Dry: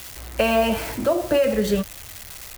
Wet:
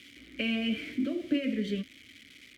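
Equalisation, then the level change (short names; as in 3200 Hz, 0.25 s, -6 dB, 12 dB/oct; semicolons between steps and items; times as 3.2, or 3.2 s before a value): vowel filter i; +4.5 dB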